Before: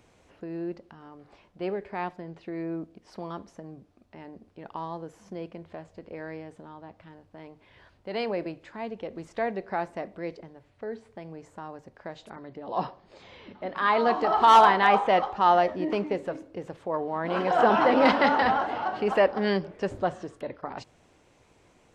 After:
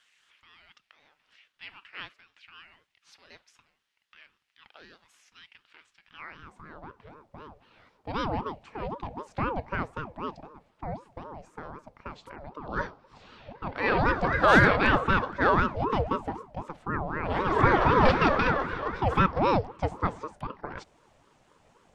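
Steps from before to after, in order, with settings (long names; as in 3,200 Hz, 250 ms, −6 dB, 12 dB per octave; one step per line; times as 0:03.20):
high-pass filter sweep 2,300 Hz → 200 Hz, 0:06.01–0:07.04
ring modulator whose carrier an LFO sweeps 520 Hz, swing 50%, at 3.9 Hz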